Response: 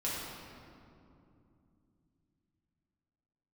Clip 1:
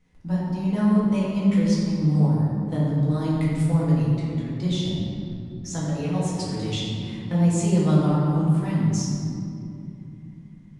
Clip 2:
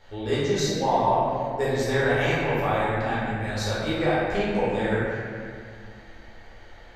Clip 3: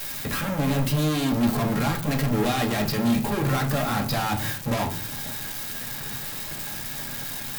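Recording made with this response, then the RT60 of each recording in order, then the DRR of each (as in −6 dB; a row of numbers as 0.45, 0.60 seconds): 1; 2.7, 2.0, 0.50 seconds; −8.0, −10.5, 0.5 decibels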